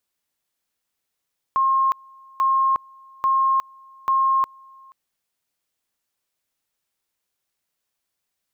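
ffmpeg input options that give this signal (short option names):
-f lavfi -i "aevalsrc='pow(10,(-15.5-28.5*gte(mod(t,0.84),0.36))/20)*sin(2*PI*1070*t)':d=3.36:s=44100"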